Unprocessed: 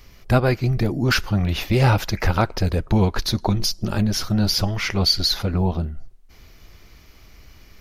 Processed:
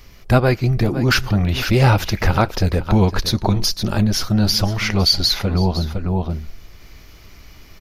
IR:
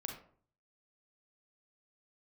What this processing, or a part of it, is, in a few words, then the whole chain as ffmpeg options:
ducked delay: -filter_complex "[0:a]asplit=3[a][b][c];[b]adelay=509,volume=-2.5dB[d];[c]apad=whole_len=366554[e];[d][e]sidechaincompress=threshold=-30dB:ratio=12:attack=6:release=161[f];[a][f]amix=inputs=2:normalize=0,volume=3dB"

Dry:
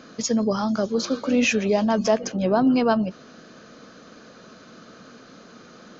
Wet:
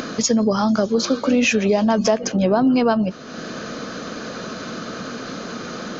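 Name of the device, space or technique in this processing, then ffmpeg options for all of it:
upward and downward compression: -af "acompressor=mode=upward:threshold=-29dB:ratio=2.5,acompressor=threshold=-23dB:ratio=3,volume=8dB"

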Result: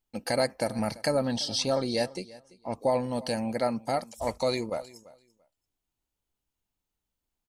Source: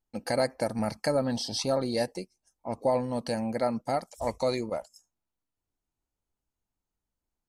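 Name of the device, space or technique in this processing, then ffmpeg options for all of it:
presence and air boost: -filter_complex "[0:a]equalizer=f=3.1k:t=o:w=0.94:g=5.5,highshelf=f=9.3k:g=6,asettb=1/sr,asplit=3[a][b][c];[a]atrim=end=1.314[d];[b]atrim=start=1.31:end=2.75,asetpts=PTS-STARTPTS,afade=t=in:d=0.004:c=qsin,afade=t=out:st=1.436:d=0.004:c=qsin,lowpass=9.5k[e];[c]atrim=start=2.746[f];[d][e]acrossfade=d=0.004:c1=hsin:c2=qsin[g];[g][f]acrossfade=d=0.004:c1=qsin:c2=hsin,aecho=1:1:339|678:0.0944|0.016"

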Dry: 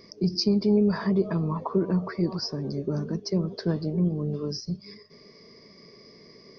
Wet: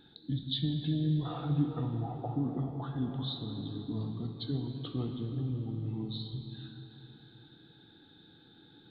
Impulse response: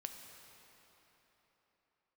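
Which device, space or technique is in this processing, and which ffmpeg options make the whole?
slowed and reverbed: -filter_complex "[0:a]asetrate=32634,aresample=44100[a];[1:a]atrim=start_sample=2205[b];[a][b]afir=irnorm=-1:irlink=0,volume=-4dB"

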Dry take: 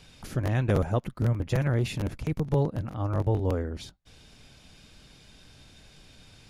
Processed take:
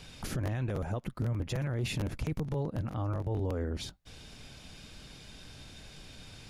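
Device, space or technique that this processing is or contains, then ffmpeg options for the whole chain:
stacked limiters: -af "alimiter=limit=-17.5dB:level=0:latency=1:release=484,alimiter=limit=-23.5dB:level=0:latency=1:release=28,alimiter=level_in=4dB:limit=-24dB:level=0:latency=1:release=186,volume=-4dB,volume=3.5dB"

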